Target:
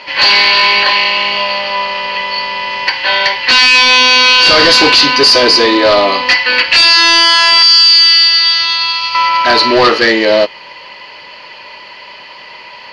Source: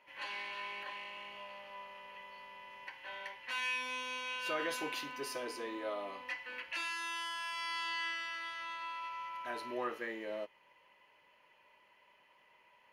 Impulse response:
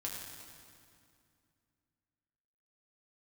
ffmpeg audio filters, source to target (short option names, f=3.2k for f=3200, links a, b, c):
-filter_complex "[0:a]asettb=1/sr,asplit=3[a][b][c];[a]atrim=end=7.624[d];[b]atrim=start=7.62:end=9.15,asetpts=PTS-STARTPTS,afade=t=in:d=0.004:c=qsin,afade=t=out:st=1.526:d=0.004:c=qsin,acrossover=split=150|3000[e][f][g];[f]acompressor=threshold=-60dB:ratio=2.5[h];[e][h][g]amix=inputs=3:normalize=0[i];[c]atrim=start=9.146[j];[d][i]acrossfade=d=0.004:c1=hsin:c2=qsin[k];[k][j]acrossfade=d=0.004:c1=qsin:c2=hsin,volume=36dB,asoftclip=hard,volume=-36dB,lowpass=f=4.6k:t=q:w=11,apsyclip=34dB,volume=-2dB"